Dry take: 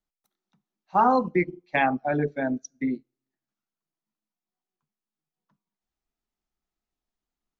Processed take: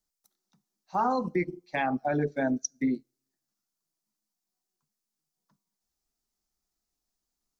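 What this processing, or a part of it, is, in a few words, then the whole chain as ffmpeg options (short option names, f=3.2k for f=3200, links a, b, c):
over-bright horn tweeter: -af "highshelf=f=3.9k:t=q:w=1.5:g=8,alimiter=limit=-18.5dB:level=0:latency=1:release=113"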